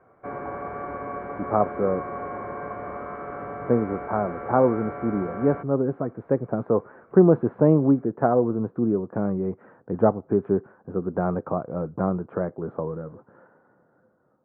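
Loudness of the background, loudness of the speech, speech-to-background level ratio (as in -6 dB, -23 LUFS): -34.5 LUFS, -24.5 LUFS, 10.0 dB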